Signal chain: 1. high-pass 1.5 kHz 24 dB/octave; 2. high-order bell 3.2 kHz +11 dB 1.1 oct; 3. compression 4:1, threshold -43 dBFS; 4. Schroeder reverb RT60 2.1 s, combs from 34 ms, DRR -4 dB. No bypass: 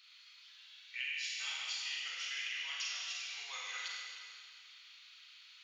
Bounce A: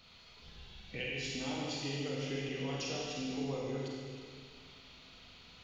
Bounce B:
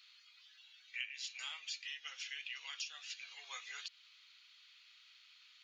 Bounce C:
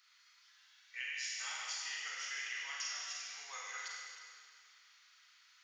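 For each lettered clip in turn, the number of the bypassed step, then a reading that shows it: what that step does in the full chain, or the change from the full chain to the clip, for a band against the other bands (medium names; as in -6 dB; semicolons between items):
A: 1, 500 Hz band +31.5 dB; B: 4, crest factor change +5.0 dB; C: 2, 4 kHz band -7.0 dB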